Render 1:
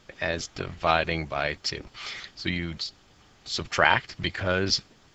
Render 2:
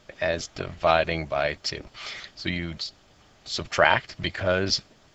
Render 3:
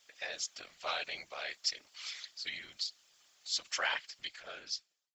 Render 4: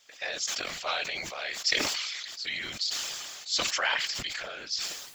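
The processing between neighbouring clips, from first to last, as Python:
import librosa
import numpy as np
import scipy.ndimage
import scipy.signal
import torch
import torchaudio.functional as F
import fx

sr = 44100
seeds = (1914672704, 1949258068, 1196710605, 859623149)

y1 = fx.peak_eq(x, sr, hz=620.0, db=7.5, octaves=0.28)
y2 = fx.fade_out_tail(y1, sr, length_s=1.3)
y2 = np.diff(y2, prepend=0.0)
y2 = fx.whisperise(y2, sr, seeds[0])
y3 = fx.sustainer(y2, sr, db_per_s=27.0)
y3 = F.gain(torch.from_numpy(y3), 5.0).numpy()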